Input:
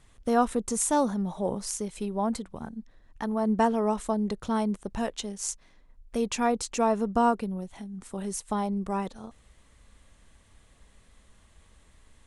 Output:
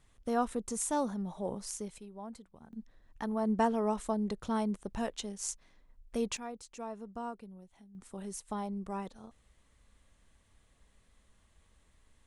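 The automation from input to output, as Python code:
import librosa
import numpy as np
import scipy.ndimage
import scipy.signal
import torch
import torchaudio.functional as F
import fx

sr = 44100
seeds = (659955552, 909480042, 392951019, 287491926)

y = fx.gain(x, sr, db=fx.steps((0.0, -7.5), (1.98, -17.0), (2.73, -5.0), (6.37, -17.5), (7.95, -8.5)))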